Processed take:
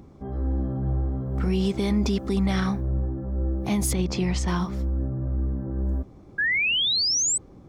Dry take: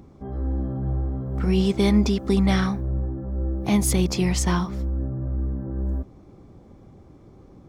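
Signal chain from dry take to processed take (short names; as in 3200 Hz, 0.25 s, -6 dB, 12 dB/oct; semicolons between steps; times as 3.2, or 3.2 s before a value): limiter -15.5 dBFS, peak gain reduction 7 dB; 3.93–4.48 air absorption 80 m; 6.38–7.38 painted sound rise 1600–8200 Hz -23 dBFS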